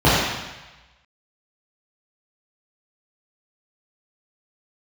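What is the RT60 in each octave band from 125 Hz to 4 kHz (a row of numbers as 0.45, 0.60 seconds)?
1.1, 0.90, 1.0, 1.2, 1.2, 1.1 seconds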